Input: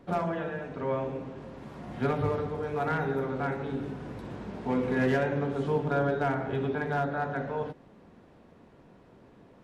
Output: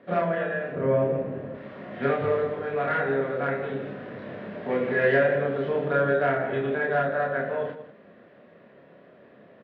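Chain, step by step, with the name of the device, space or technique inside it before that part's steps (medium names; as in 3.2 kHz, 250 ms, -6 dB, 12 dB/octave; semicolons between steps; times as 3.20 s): 0.72–1.55 s: tilt EQ -3.5 dB/octave; kitchen radio (cabinet simulation 190–3600 Hz, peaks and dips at 300 Hz -5 dB, 590 Hz +8 dB, 870 Hz -9 dB, 1.8 kHz +7 dB); loudspeakers at several distances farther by 10 m -1 dB, 66 m -12 dB; trim +1.5 dB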